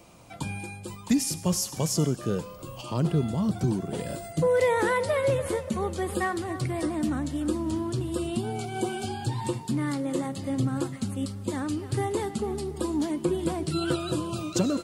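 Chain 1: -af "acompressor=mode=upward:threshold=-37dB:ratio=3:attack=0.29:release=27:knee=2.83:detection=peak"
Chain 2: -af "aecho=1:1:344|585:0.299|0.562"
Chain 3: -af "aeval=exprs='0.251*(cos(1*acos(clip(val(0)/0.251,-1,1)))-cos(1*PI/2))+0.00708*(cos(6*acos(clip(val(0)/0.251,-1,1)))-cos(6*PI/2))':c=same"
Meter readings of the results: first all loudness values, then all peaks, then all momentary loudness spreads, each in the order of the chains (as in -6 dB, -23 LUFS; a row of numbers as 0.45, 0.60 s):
-28.5, -27.0, -28.5 LUFS; -12.0, -12.0, -12.0 dBFS; 8, 6, 8 LU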